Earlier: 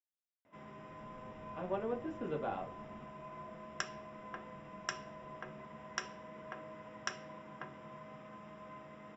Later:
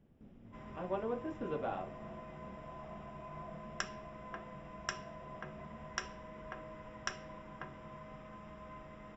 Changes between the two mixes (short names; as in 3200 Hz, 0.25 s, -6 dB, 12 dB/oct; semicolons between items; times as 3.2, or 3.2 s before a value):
speech: entry -0.80 s; first sound: remove HPF 140 Hz 12 dB/oct; second sound +7.5 dB